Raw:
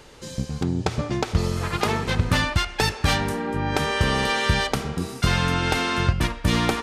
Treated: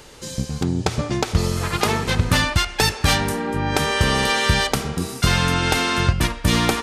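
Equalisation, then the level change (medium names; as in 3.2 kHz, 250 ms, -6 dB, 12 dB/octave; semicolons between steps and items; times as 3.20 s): treble shelf 5.5 kHz +7.5 dB; +2.5 dB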